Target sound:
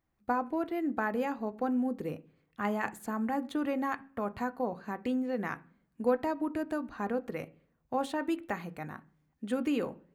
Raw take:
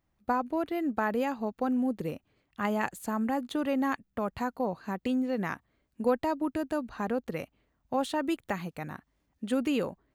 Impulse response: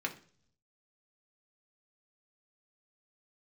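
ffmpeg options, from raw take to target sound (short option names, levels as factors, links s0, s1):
-filter_complex "[0:a]asplit=2[s0][s1];[1:a]atrim=start_sample=2205,lowpass=2900[s2];[s1][s2]afir=irnorm=-1:irlink=0,volume=0.422[s3];[s0][s3]amix=inputs=2:normalize=0,volume=0.562"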